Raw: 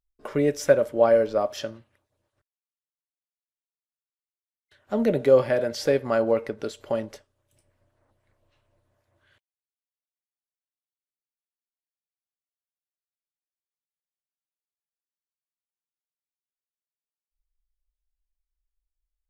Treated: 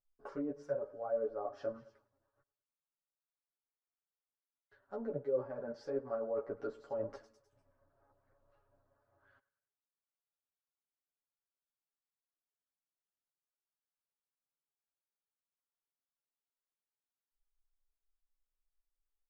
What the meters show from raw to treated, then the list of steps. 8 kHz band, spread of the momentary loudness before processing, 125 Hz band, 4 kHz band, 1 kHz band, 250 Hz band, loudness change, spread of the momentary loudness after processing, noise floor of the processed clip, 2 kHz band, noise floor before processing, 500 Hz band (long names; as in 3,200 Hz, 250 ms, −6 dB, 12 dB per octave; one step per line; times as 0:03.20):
below −30 dB, 14 LU, −18.5 dB, below −25 dB, −15.5 dB, −16.0 dB, −16.5 dB, 8 LU, below −85 dBFS, −22.5 dB, below −85 dBFS, −16.0 dB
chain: low-shelf EQ 320 Hz −7.5 dB
reversed playback
downward compressor 8 to 1, threshold −35 dBFS, peak gain reduction 21 dB
reversed playback
flat-topped bell 2,700 Hz −11.5 dB 1.2 octaves
low-pass that shuts in the quiet parts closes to 1,900 Hz, open at −39.5 dBFS
on a send: repeating echo 103 ms, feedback 46%, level −20 dB
on the sum: treble cut that deepens with the level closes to 1,100 Hz, closed at −35 dBFS
comb filter 7.2 ms, depth 71%
string-ensemble chorus
level +1 dB